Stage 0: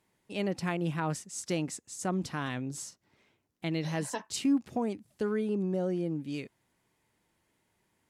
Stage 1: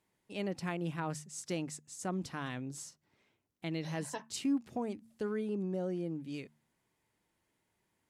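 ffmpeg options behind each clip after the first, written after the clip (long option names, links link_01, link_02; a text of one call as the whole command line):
ffmpeg -i in.wav -af "bandreject=frequency=75.4:width_type=h:width=4,bandreject=frequency=150.8:width_type=h:width=4,bandreject=frequency=226.2:width_type=h:width=4,volume=-5dB" out.wav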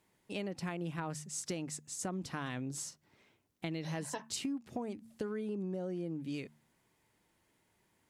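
ffmpeg -i in.wav -af "acompressor=threshold=-41dB:ratio=6,volume=5.5dB" out.wav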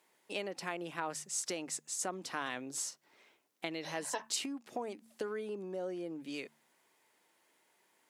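ffmpeg -i in.wav -af "highpass=420,volume=4dB" out.wav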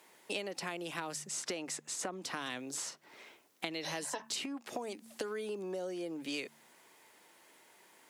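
ffmpeg -i in.wav -filter_complex "[0:a]acrossover=split=380|3400[link_01][link_02][link_03];[link_01]acompressor=threshold=-57dB:ratio=4[link_04];[link_02]acompressor=threshold=-51dB:ratio=4[link_05];[link_03]acompressor=threshold=-52dB:ratio=4[link_06];[link_04][link_05][link_06]amix=inputs=3:normalize=0,volume=10dB" out.wav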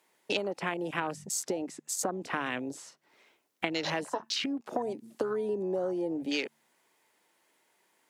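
ffmpeg -i in.wav -af "afwtdn=0.00794,volume=8dB" out.wav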